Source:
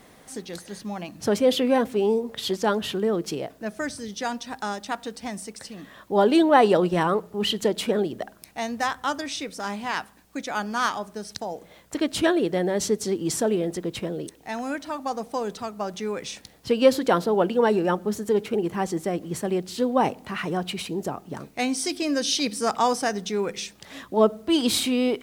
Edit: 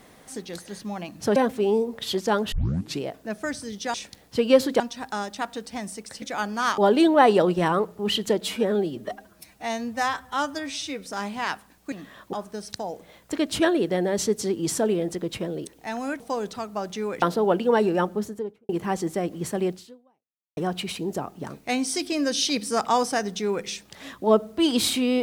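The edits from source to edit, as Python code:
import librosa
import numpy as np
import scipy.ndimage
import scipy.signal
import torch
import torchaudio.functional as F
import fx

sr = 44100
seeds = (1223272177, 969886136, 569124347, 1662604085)

y = fx.studio_fade_out(x, sr, start_s=17.95, length_s=0.64)
y = fx.edit(y, sr, fx.cut(start_s=1.36, length_s=0.36),
    fx.tape_start(start_s=2.88, length_s=0.49),
    fx.swap(start_s=5.72, length_s=0.41, other_s=10.39, other_length_s=0.56),
    fx.stretch_span(start_s=7.76, length_s=1.76, factor=1.5),
    fx.cut(start_s=14.82, length_s=0.42),
    fx.move(start_s=16.26, length_s=0.86, to_s=4.3),
    fx.fade_out_span(start_s=19.63, length_s=0.84, curve='exp'), tone=tone)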